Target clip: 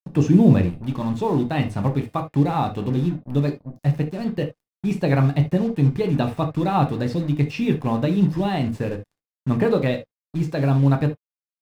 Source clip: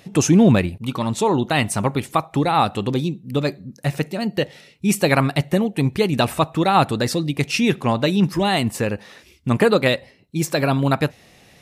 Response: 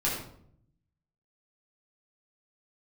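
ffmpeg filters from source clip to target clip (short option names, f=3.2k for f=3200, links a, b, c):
-filter_complex "[0:a]acrusher=bits=4:mix=0:aa=0.5,acrossover=split=5000[a][b];[b]acompressor=threshold=-42dB:ratio=4:attack=1:release=60[c];[a][c]amix=inputs=2:normalize=0,tiltshelf=f=760:g=5.5,asplit=2[d][e];[1:a]atrim=start_sample=2205,atrim=end_sample=3528[f];[e][f]afir=irnorm=-1:irlink=0,volume=-10dB[g];[d][g]amix=inputs=2:normalize=0,volume=-9dB"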